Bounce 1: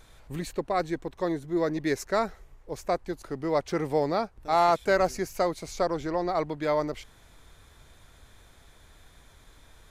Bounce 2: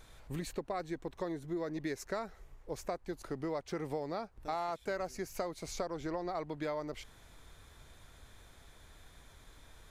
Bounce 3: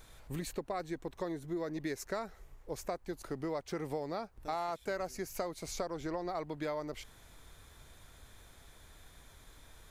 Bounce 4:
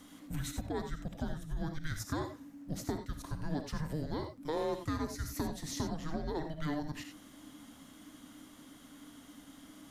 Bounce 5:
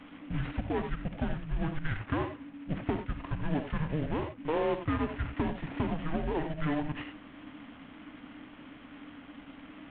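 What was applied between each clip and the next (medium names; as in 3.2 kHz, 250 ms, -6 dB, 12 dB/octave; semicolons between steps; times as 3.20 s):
compression 6:1, threshold -32 dBFS, peak gain reduction 13.5 dB; trim -2.5 dB
treble shelf 9.7 kHz +7 dB
gated-style reverb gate 110 ms rising, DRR 6 dB; frequency shift -310 Hz; trim +1 dB
CVSD coder 16 kbps; trim +5.5 dB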